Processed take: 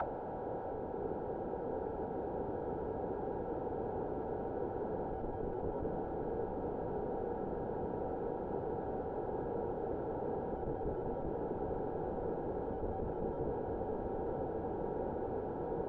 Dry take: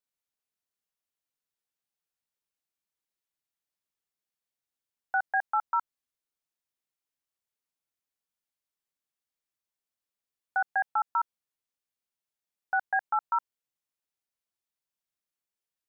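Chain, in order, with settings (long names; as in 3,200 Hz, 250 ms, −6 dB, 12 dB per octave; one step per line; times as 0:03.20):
compressor on every frequency bin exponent 0.2
dynamic equaliser 720 Hz, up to +4 dB, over −41 dBFS, Q 2.1
downward compressor 8 to 1, threshold −29 dBFS, peak gain reduction 11.5 dB
comparator with hysteresis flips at −42.5 dBFS
on a send: feedback delay with all-pass diffusion 955 ms, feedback 67%, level −4 dB
on the sum: envelope-controlled low-pass 460–1,800 Hz down, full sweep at −35.5 dBFS
level −2.5 dB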